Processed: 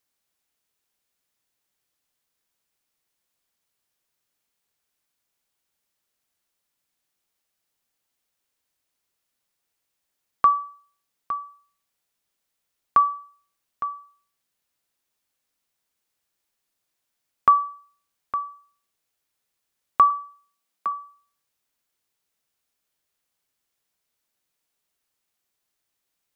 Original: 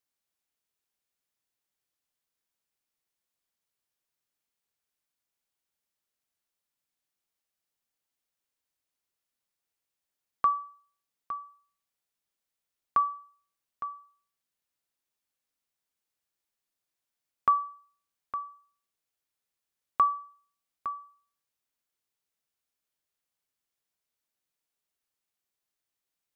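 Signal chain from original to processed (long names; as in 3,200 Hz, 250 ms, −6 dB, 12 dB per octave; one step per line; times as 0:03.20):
0:20.10–0:20.92: Butterworth high-pass 150 Hz 96 dB per octave
level +7.5 dB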